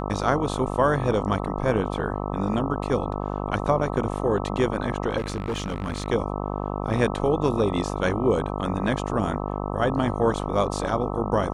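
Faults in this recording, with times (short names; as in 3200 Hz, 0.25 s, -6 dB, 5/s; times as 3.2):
buzz 50 Hz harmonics 26 -29 dBFS
5.17–6.08 clipped -23 dBFS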